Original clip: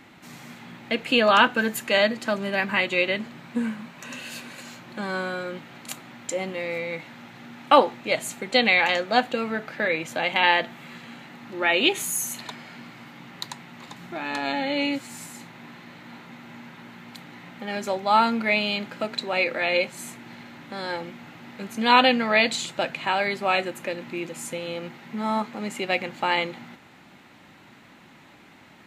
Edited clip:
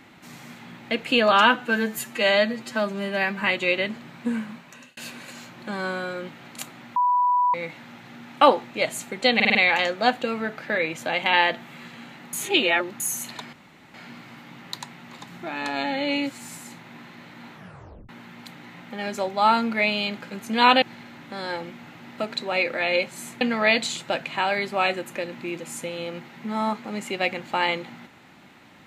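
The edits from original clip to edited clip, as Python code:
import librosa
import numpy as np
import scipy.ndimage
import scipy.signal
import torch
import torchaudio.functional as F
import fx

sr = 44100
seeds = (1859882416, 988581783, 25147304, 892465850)

y = fx.edit(x, sr, fx.stretch_span(start_s=1.32, length_s=1.4, factor=1.5),
    fx.fade_out_span(start_s=3.82, length_s=0.45),
    fx.bleep(start_s=6.26, length_s=0.58, hz=986.0, db=-17.0),
    fx.stutter(start_s=8.65, slice_s=0.05, count=5),
    fx.reverse_span(start_s=11.43, length_s=0.67),
    fx.insert_room_tone(at_s=12.63, length_s=0.41),
    fx.tape_stop(start_s=16.22, length_s=0.56),
    fx.swap(start_s=18.99, length_s=1.23, other_s=21.58, other_length_s=0.52), tone=tone)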